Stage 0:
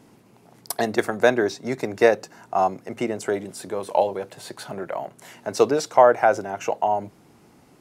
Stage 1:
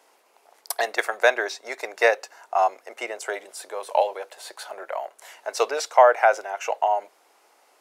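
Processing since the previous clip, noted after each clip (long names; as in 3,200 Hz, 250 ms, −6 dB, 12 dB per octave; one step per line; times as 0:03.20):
dynamic equaliser 2,300 Hz, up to +5 dB, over −38 dBFS, Q 1.1
high-pass filter 530 Hz 24 dB per octave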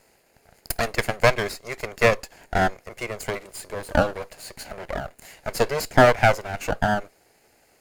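lower of the sound and its delayed copy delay 0.43 ms
parametric band 2,500 Hz −3.5 dB 1.8 octaves
level +3 dB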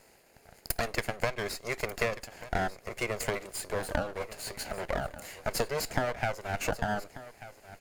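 downward compressor 20 to 1, threshold −26 dBFS, peak gain reduction 18 dB
single-tap delay 1,189 ms −16 dB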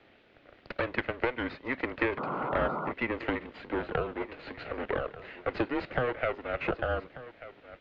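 sound drawn into the spectrogram noise, 0:02.17–0:02.92, 250–1,600 Hz −35 dBFS
background noise violet −48 dBFS
single-sideband voice off tune −130 Hz 170–3,400 Hz
level +1.5 dB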